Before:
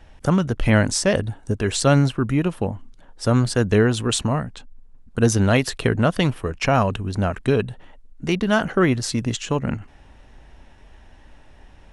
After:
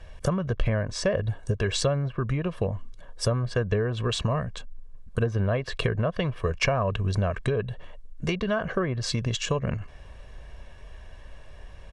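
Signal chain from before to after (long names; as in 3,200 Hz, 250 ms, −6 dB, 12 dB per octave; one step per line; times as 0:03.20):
treble cut that deepens with the level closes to 1,700 Hz, closed at −13 dBFS
downward compressor 10 to 1, threshold −22 dBFS, peak gain reduction 12 dB
comb filter 1.8 ms, depth 62%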